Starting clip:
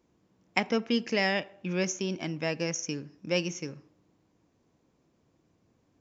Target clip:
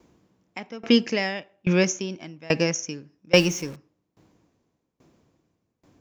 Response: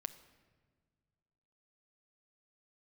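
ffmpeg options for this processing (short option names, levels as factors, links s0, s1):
-filter_complex "[0:a]asettb=1/sr,asplit=3[s0][s1][s2];[s0]atrim=end=3.344[s3];[s1]atrim=start=3.34:end=3.76,asetpts=PTS-STARTPTS,afade=t=in:d=0.004:c=qsin,afade=t=out:st=0.416:d=0.004:c=qsin,aeval=exprs='val(0)+0.5*0.00944*sgn(val(0))':c=same[s4];[s2]atrim=start=3.756[s5];[s3][s4]acrossfade=d=0.004:c1=hsin:c2=qsin[s6];[s6][s5]acrossfade=d=0.004:c1=qsin:c2=hsin,alimiter=level_in=4.47:limit=0.891:release=50:level=0:latency=1,aeval=exprs='val(0)*pow(10,-26*if(lt(mod(1.2*n/s,1),2*abs(1.2)/1000),1-mod(1.2*n/s,1)/(2*abs(1.2)/1000),(mod(1.2*n/s,1)-2*abs(1.2)/1000)/(1-2*abs(1.2)/1000))/20)':c=same"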